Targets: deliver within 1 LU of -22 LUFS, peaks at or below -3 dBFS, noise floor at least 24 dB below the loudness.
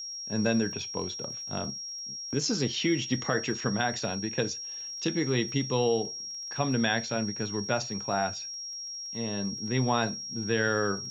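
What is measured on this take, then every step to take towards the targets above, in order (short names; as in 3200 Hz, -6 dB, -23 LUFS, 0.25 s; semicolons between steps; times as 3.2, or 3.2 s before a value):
ticks 22/s; steady tone 5600 Hz; tone level -36 dBFS; loudness -30.0 LUFS; peak -12.0 dBFS; loudness target -22.0 LUFS
-> de-click; notch 5600 Hz, Q 30; gain +8 dB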